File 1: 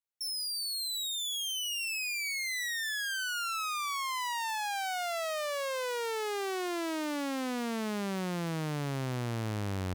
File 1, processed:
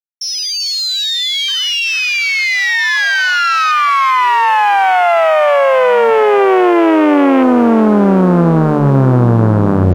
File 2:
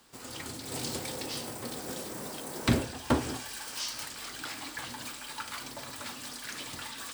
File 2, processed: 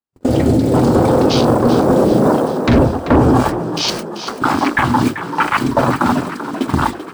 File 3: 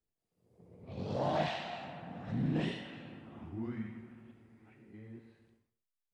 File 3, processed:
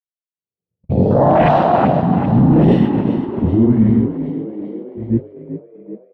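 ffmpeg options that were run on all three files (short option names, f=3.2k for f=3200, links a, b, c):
-filter_complex "[0:a]afwtdn=0.0112,agate=range=-52dB:threshold=-49dB:ratio=16:detection=peak,bandreject=f=50:t=h:w=6,bandreject=f=100:t=h:w=6,bandreject=f=150:t=h:w=6,areverse,acompressor=threshold=-45dB:ratio=5,areverse,highshelf=f=2.1k:g=-11,acontrast=73,apsyclip=35dB,asplit=2[a][b];[b]asplit=6[c][d][e][f][g][h];[c]adelay=387,afreqshift=45,volume=-11dB[i];[d]adelay=774,afreqshift=90,volume=-15.9dB[j];[e]adelay=1161,afreqshift=135,volume=-20.8dB[k];[f]adelay=1548,afreqshift=180,volume=-25.6dB[l];[g]adelay=1935,afreqshift=225,volume=-30.5dB[m];[h]adelay=2322,afreqshift=270,volume=-35.4dB[n];[i][j][k][l][m][n]amix=inputs=6:normalize=0[o];[a][o]amix=inputs=2:normalize=0,volume=-5dB"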